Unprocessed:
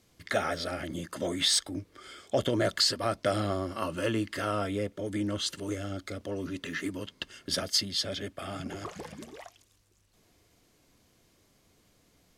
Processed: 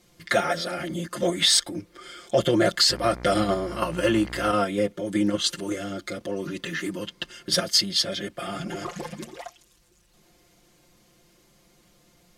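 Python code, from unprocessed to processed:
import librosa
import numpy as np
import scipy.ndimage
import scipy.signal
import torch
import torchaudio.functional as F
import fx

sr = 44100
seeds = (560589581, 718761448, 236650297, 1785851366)

p1 = x + 0.98 * np.pad(x, (int(5.7 * sr / 1000.0), 0))[:len(x)]
p2 = fx.level_steps(p1, sr, step_db=14)
p3 = p1 + F.gain(torch.from_numpy(p2), -0.5).numpy()
y = fx.dmg_buzz(p3, sr, base_hz=60.0, harmonics=40, level_db=-39.0, tilt_db=-5, odd_only=False, at=(2.89, 4.52), fade=0.02)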